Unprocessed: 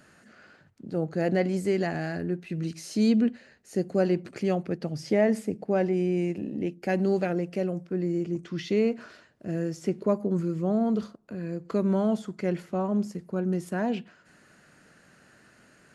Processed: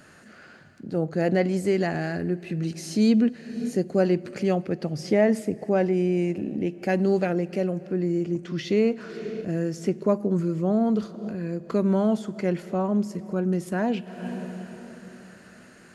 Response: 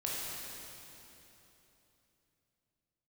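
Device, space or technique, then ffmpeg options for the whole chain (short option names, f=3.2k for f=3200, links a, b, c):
ducked reverb: -filter_complex "[0:a]asplit=3[a][b][c];[1:a]atrim=start_sample=2205[d];[b][d]afir=irnorm=-1:irlink=0[e];[c]apad=whole_len=703260[f];[e][f]sidechaincompress=threshold=-48dB:ratio=4:attack=6:release=192,volume=-7dB[g];[a][g]amix=inputs=2:normalize=0,volume=2.5dB"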